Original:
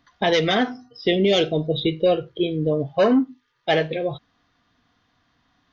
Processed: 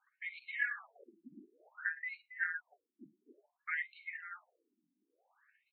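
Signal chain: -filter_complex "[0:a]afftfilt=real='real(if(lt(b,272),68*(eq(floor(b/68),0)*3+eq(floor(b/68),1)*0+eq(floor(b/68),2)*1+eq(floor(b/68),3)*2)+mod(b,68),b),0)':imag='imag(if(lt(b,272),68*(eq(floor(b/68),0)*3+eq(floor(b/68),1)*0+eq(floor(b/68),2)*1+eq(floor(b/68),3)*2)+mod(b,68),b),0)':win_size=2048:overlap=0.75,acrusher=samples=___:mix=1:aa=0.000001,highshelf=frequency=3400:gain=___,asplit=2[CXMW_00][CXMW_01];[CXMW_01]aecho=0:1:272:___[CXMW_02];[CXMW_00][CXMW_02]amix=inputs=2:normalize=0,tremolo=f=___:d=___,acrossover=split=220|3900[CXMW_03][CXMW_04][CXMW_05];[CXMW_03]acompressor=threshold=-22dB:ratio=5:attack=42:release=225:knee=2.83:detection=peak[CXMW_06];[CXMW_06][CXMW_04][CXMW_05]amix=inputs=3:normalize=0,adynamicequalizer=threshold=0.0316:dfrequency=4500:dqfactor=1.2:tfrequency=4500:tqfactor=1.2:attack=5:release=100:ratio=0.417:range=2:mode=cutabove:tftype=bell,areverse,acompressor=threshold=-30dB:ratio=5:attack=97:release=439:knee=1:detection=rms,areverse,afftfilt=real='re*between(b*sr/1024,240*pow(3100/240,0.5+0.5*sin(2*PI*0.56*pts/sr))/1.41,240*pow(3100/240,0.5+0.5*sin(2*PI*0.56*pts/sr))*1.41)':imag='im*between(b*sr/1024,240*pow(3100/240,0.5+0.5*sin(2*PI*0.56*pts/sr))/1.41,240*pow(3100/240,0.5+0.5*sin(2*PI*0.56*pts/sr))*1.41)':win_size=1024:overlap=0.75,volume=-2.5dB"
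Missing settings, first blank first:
13, 8, 0.119, 17, 0.35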